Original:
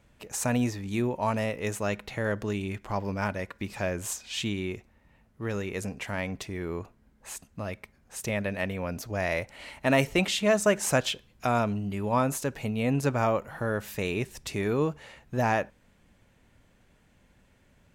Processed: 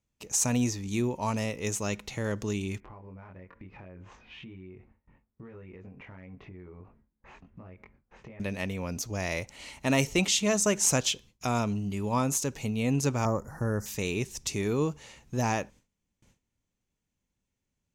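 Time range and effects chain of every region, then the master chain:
0:02.80–0:08.40: low-pass filter 2,100 Hz 24 dB per octave + double-tracking delay 22 ms −2 dB + downward compressor 10 to 1, threshold −42 dBFS
0:13.25–0:13.86: Chebyshev band-stop filter 1,800–5,000 Hz, order 3 + low-shelf EQ 140 Hz +7 dB
whole clip: noise gate with hold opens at −49 dBFS; graphic EQ with 15 bands 630 Hz −6 dB, 1,600 Hz −7 dB, 6,300 Hz +10 dB

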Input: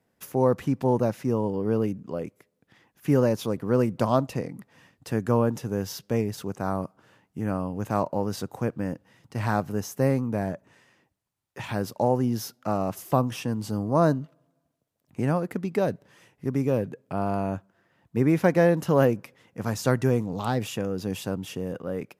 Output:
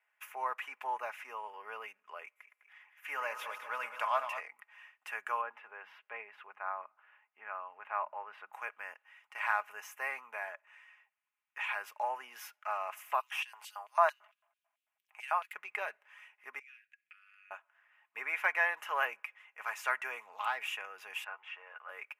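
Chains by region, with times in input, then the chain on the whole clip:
0:02.26–0:04.40: feedback delay that plays each chunk backwards 102 ms, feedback 79%, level −10.5 dB + notch filter 380 Hz, Q 5.5
0:05.41–0:08.53: high-frequency loss of the air 450 metres + mains-hum notches 50/100/150/200/250/300 Hz
0:13.20–0:15.54: high-shelf EQ 9,700 Hz +4.5 dB + auto-filter high-pass square 4.5 Hz 730–3,600 Hz
0:16.59–0:17.51: inverse Chebyshev band-stop filter 180–1,000 Hz + downward compressor 2.5 to 1, threshold −56 dBFS + high-frequency loss of the air 52 metres
0:21.24–0:21.89: band-pass filter 650–2,100 Hz + double-tracking delay 13 ms −6 dB
whole clip: high-pass filter 940 Hz 24 dB per octave; high shelf with overshoot 3,300 Hz −9.5 dB, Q 3; comb filter 4.8 ms, depth 46%; level −2 dB

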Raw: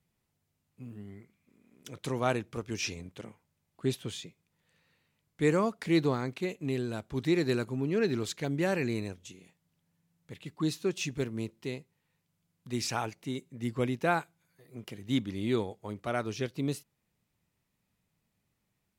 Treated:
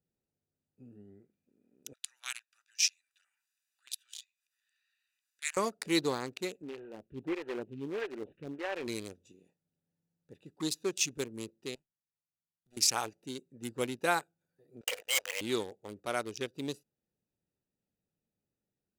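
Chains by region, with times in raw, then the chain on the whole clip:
0:01.93–0:05.57: inverse Chebyshev high-pass filter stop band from 480 Hz, stop band 60 dB + upward compression, threshold −53 dBFS
0:06.62–0:08.88: variable-slope delta modulation 16 kbit/s + phaser with staggered stages 1.6 Hz
0:11.75–0:12.77: lower of the sound and its delayed copy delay 0.91 ms + guitar amp tone stack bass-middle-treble 5-5-5
0:14.81–0:15.41: linear-phase brick-wall band-pass 450–3,300 Hz + leveller curve on the samples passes 5
whole clip: adaptive Wiener filter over 41 samples; bass and treble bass −13 dB, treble +14 dB; notch filter 660 Hz, Q 12

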